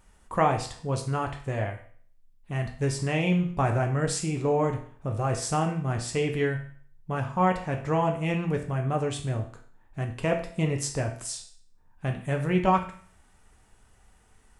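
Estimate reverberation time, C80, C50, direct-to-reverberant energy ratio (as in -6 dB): 0.50 s, 13.0 dB, 9.0 dB, 3.0 dB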